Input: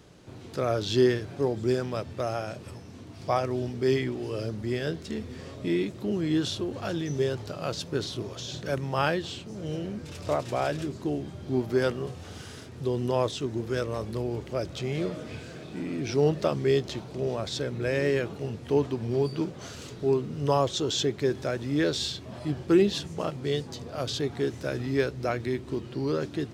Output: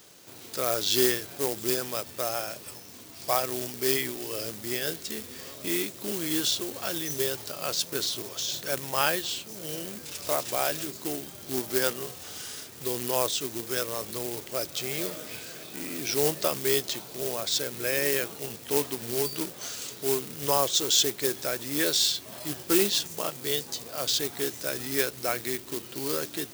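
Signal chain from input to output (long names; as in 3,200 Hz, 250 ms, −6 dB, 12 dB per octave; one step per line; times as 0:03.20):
floating-point word with a short mantissa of 2 bits
RIAA equalisation recording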